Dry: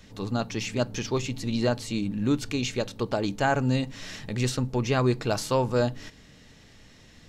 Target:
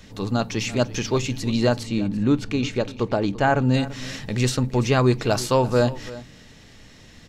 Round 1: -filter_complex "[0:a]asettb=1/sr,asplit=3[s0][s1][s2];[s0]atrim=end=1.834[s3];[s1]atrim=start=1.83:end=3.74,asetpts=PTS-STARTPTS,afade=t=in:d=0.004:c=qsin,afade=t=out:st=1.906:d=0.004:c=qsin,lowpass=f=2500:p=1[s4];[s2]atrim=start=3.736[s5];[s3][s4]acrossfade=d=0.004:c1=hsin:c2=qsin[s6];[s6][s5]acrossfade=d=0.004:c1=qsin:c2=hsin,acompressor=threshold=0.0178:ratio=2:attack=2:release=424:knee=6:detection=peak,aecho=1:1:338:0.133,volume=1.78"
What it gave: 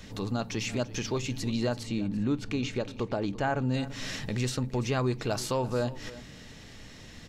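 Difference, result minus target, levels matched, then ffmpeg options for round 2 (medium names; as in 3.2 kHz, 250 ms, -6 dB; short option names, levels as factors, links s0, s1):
compression: peak gain reduction +11 dB
-filter_complex "[0:a]asettb=1/sr,asplit=3[s0][s1][s2];[s0]atrim=end=1.834[s3];[s1]atrim=start=1.83:end=3.74,asetpts=PTS-STARTPTS,afade=t=in:d=0.004:c=qsin,afade=t=out:st=1.906:d=0.004:c=qsin,lowpass=f=2500:p=1[s4];[s2]atrim=start=3.736[s5];[s3][s4]acrossfade=d=0.004:c1=hsin:c2=qsin[s6];[s6][s5]acrossfade=d=0.004:c1=qsin:c2=hsin,aecho=1:1:338:0.133,volume=1.78"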